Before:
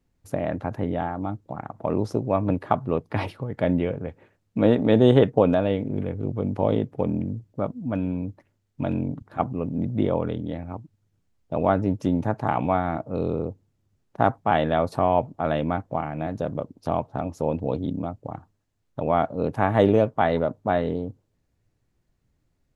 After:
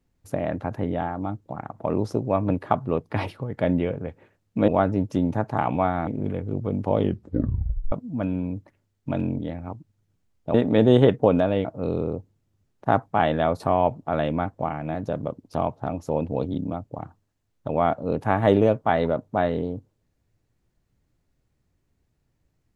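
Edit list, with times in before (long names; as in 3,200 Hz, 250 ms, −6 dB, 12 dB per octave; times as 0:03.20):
0:04.68–0:05.79: swap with 0:11.58–0:12.97
0:06.70: tape stop 0.94 s
0:09.11–0:10.43: remove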